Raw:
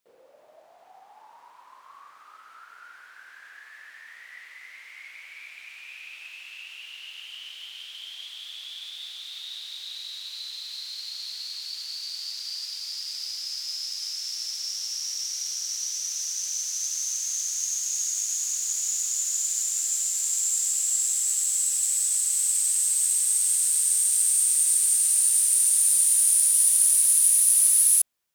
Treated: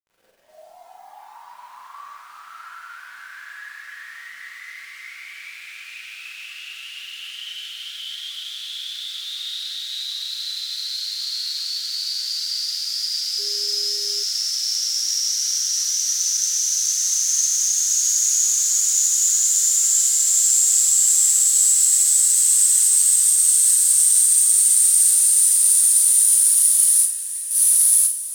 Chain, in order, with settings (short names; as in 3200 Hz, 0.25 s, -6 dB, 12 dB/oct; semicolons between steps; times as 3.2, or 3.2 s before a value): spectral noise reduction 15 dB; dynamic EQ 2500 Hz, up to -5 dB, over -52 dBFS, Q 2.5; limiter -15.5 dBFS, peak gain reduction 9 dB; 27–27.51 vowel filter e; diffused feedback echo 0.481 s, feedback 66%, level -15 dB; bit-crush 11-bit; Schroeder reverb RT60 0.39 s, combs from 33 ms, DRR -7 dB; 13.38–14.22 whine 410 Hz -42 dBFS; gain +1.5 dB